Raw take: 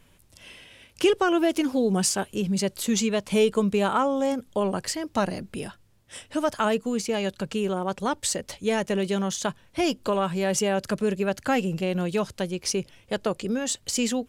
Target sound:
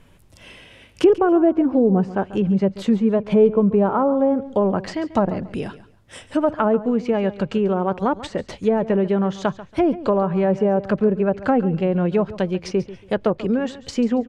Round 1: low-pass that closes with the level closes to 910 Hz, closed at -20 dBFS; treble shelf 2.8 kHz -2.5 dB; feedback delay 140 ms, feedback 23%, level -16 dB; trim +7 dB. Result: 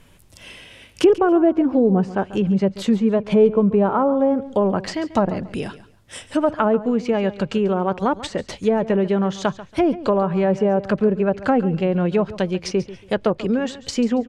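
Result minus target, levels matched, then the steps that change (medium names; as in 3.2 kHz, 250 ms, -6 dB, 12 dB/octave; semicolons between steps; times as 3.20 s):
4 kHz band +4.0 dB
change: treble shelf 2.8 kHz -9.5 dB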